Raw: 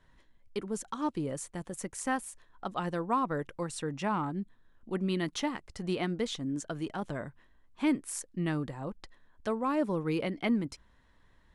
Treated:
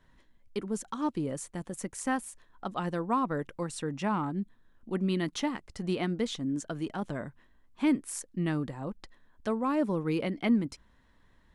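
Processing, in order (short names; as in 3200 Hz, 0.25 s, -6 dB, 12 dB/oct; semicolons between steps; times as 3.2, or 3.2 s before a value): bell 230 Hz +3.5 dB 0.86 oct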